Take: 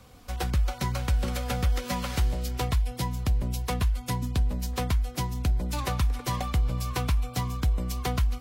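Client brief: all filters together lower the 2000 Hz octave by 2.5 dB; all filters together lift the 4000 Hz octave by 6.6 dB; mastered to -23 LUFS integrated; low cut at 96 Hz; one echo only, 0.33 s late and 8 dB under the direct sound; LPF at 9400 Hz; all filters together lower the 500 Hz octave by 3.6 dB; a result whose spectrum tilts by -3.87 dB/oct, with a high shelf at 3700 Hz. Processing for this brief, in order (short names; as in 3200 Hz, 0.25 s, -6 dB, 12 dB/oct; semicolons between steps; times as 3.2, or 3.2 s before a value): HPF 96 Hz; LPF 9400 Hz; bell 500 Hz -4 dB; bell 2000 Hz -6.5 dB; high shelf 3700 Hz +4 dB; bell 4000 Hz +7.5 dB; echo 0.33 s -8 dB; gain +8 dB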